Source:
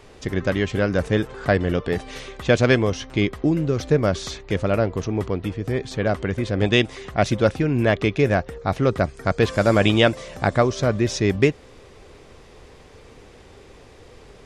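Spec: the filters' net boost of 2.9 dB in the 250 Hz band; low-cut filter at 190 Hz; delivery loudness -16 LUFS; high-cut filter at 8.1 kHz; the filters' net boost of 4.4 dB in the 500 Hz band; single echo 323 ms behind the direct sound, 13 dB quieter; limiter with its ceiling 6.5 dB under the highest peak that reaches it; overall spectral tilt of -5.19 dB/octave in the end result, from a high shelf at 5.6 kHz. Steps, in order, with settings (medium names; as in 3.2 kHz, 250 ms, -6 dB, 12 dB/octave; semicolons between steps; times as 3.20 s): high-pass 190 Hz; low-pass 8.1 kHz; peaking EQ 250 Hz +4 dB; peaking EQ 500 Hz +4.5 dB; treble shelf 5.6 kHz -5 dB; peak limiter -6 dBFS; delay 323 ms -13 dB; trim +4.5 dB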